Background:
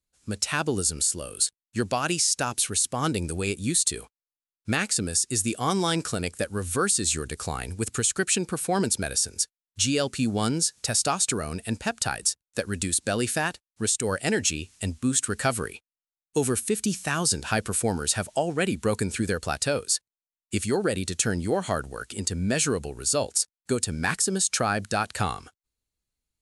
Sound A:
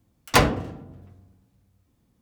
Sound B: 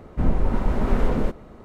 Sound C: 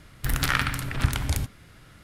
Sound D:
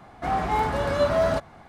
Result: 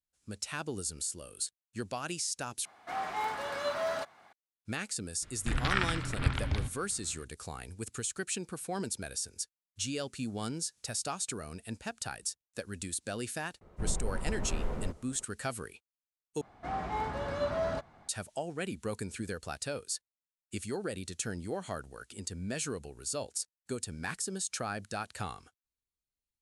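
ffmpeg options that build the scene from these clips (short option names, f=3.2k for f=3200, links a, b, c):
-filter_complex "[4:a]asplit=2[a][b];[0:a]volume=-11.5dB[c];[a]highpass=f=1.3k:p=1[d];[3:a]lowpass=f=4.3k:w=0.5412,lowpass=f=4.3k:w=1.3066[e];[2:a]equalizer=f=270:t=o:w=0.35:g=-8.5[f];[b]lowpass=8.6k[g];[c]asplit=3[h][i][j];[h]atrim=end=2.654[k];[d]atrim=end=1.68,asetpts=PTS-STARTPTS,volume=-4.5dB[l];[i]atrim=start=4.326:end=16.414[m];[g]atrim=end=1.68,asetpts=PTS-STARTPTS,volume=-10.5dB[n];[j]atrim=start=18.086[o];[e]atrim=end=2.03,asetpts=PTS-STARTPTS,volume=-5.5dB,afade=t=in:d=0.004:c=hsin,afade=t=out:st=2.026:d=0.004:c=hsin,adelay=5220[p];[f]atrim=end=1.64,asetpts=PTS-STARTPTS,volume=-13dB,afade=t=in:d=0.004:c=hsin,afade=t=out:st=1.636:d=0.004:c=hsin,adelay=13610[q];[k][l]acrossfade=d=0.004:c1=hsin:c2=hsin[r];[r][m]acrossfade=d=0.004:c1=hsin:c2=hsin[s];[s][n]acrossfade=d=0.004:c1=hsin:c2=hsin[t];[t][o]acrossfade=d=0.004:c1=hsin:c2=hsin[u];[u][p][q]amix=inputs=3:normalize=0"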